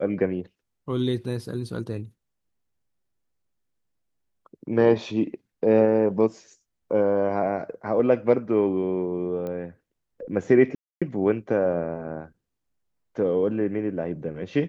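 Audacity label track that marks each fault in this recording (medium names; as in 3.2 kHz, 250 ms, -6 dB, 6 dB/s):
9.470000	9.470000	pop -22 dBFS
10.750000	11.020000	dropout 266 ms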